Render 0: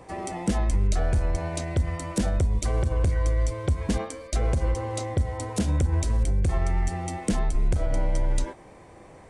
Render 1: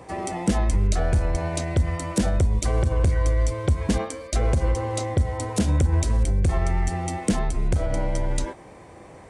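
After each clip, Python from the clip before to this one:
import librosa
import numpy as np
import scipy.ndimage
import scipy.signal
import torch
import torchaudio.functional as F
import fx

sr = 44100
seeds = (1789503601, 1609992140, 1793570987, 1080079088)

y = scipy.signal.sosfilt(scipy.signal.butter(2, 41.0, 'highpass', fs=sr, output='sos'), x)
y = y * 10.0 ** (3.5 / 20.0)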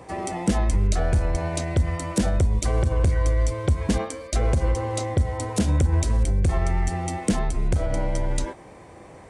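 y = x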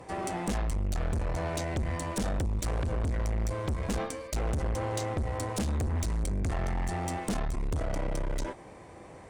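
y = fx.tube_stage(x, sr, drive_db=27.0, bias=0.65)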